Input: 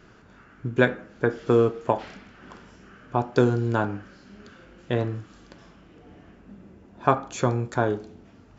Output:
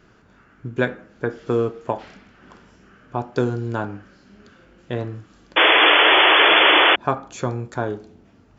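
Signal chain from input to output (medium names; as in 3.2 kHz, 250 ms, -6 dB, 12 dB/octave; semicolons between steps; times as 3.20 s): painted sound noise, 5.56–6.96 s, 290–3500 Hz -12 dBFS; trim -1.5 dB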